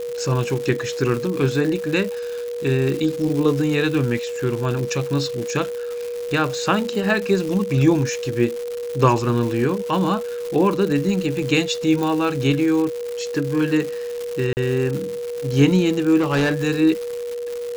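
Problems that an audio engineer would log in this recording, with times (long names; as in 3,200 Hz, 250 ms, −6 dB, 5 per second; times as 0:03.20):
surface crackle 290 per second −26 dBFS
whistle 480 Hz −25 dBFS
0:12.03: click
0:14.53–0:14.57: drop-out 39 ms
0:16.19–0:16.55: clipping −15.5 dBFS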